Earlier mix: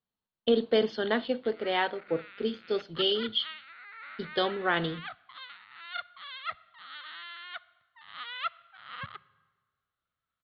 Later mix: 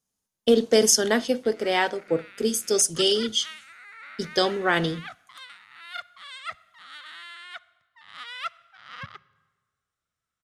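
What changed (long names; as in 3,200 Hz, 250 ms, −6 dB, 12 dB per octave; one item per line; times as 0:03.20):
speech +3.5 dB
master: remove Chebyshev low-pass with heavy ripple 4,400 Hz, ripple 3 dB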